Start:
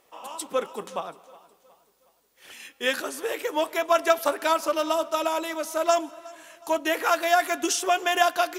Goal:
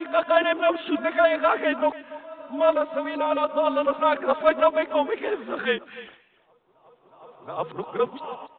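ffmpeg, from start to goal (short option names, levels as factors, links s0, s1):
-filter_complex "[0:a]areverse,afreqshift=-39,aresample=8000,aresample=44100,acrossover=split=1900[s0][s1];[s0]acontrast=61[s2];[s2][s1]amix=inputs=2:normalize=0,aecho=1:1:288:0.141,volume=0.668"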